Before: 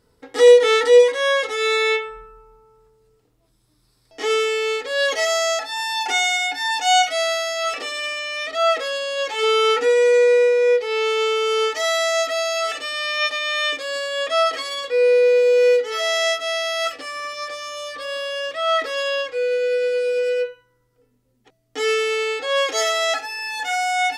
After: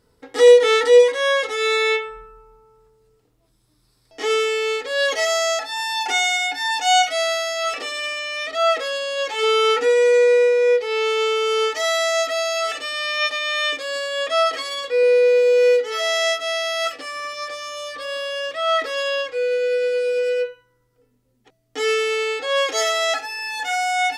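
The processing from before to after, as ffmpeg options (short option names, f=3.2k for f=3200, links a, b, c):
-filter_complex "[0:a]asettb=1/sr,asplit=3[a][b][c];[a]atrim=end=15.034[d];[b]atrim=start=15.03:end=17.11,asetpts=PTS-STARTPTS,afade=t=in:d=0.004:c=qsin,afade=t=out:st=2.076:d=0.004:c=qsin,highpass=93[e];[c]atrim=start=17.106[f];[d][e]acrossfade=d=0.004:c1=hsin:c2=qsin[g];[g][f]acrossfade=d=0.004:c1=qsin:c2=hsin"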